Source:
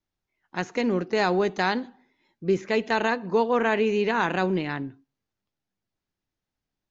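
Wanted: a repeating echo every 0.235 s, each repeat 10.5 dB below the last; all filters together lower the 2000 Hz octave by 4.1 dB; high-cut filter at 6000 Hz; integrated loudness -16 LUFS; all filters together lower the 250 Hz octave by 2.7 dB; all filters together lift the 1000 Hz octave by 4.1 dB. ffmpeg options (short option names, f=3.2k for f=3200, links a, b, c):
-af "lowpass=6k,equalizer=f=250:t=o:g=-4,equalizer=f=1k:t=o:g=7,equalizer=f=2k:t=o:g=-8.5,aecho=1:1:235|470|705:0.299|0.0896|0.0269,volume=8.5dB"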